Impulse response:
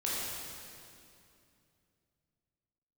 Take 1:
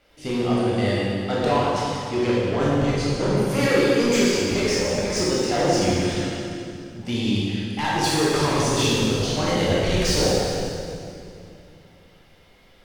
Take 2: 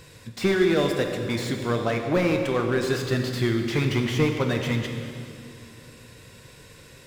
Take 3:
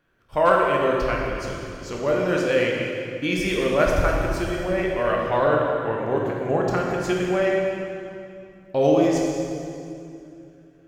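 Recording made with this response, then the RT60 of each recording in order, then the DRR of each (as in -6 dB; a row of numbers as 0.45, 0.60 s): 1; 2.6, 2.6, 2.6 s; -7.5, 4.0, -2.0 dB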